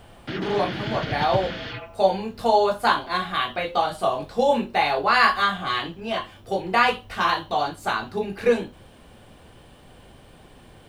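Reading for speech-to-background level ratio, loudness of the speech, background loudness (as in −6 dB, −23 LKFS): 8.5 dB, −23.0 LKFS, −31.5 LKFS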